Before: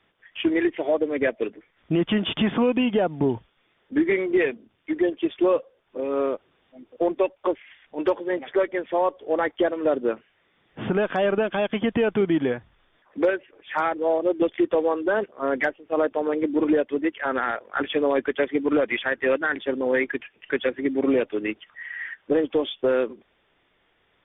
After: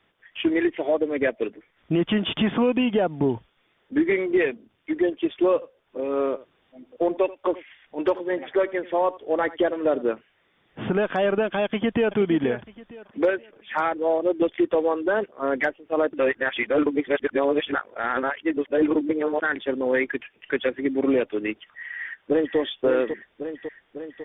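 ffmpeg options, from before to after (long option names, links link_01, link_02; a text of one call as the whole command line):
ffmpeg -i in.wav -filter_complex "[0:a]asettb=1/sr,asplit=3[link_01][link_02][link_03];[link_01]atrim=end=5.534[link_04];[link_02]atrim=start=5.53:end=10.13,asetpts=PTS-STARTPTS,afade=type=in:duration=0.004:curve=qsin,afade=type=out:start_time=4.596:duration=0.004:curve=qsin,aecho=1:1:84:0.119,atrim=end_sample=202860[link_05];[link_03]atrim=start=10.126[link_06];[link_04][link_05]acrossfade=duration=0.004:curve1=hsin:curve2=qsin[link_07];[link_07][link_06]acrossfade=duration=0.004:curve1=qsin:curve2=hsin,asplit=2[link_08][link_09];[link_09]afade=type=in:start_time=11.64:duration=0.01,afade=type=out:start_time=12.16:duration=0.01,aecho=0:1:470|940|1410|1880:0.266073|0.0931254|0.0325939|0.0114079[link_10];[link_08][link_10]amix=inputs=2:normalize=0,asplit=2[link_11][link_12];[link_12]afade=type=in:start_time=21.9:duration=0.01,afade=type=out:start_time=22.58:duration=0.01,aecho=0:1:550|1100|1650|2200|2750|3300|3850|4400|4950:0.446684|0.290344|0.188724|0.12267|0.0797358|0.0518283|0.0336884|0.0218974|0.0142333[link_13];[link_11][link_13]amix=inputs=2:normalize=0,asplit=3[link_14][link_15][link_16];[link_14]atrim=end=16.132[link_17];[link_15]atrim=start=16.128:end=19.422,asetpts=PTS-STARTPTS,areverse[link_18];[link_16]atrim=start=19.418[link_19];[link_17][link_18]acrossfade=duration=0.004:curve1=hsin:curve2=hsin[link_20];[link_20][link_19]acrossfade=duration=0.004:curve1=hsin:curve2=hsin" out.wav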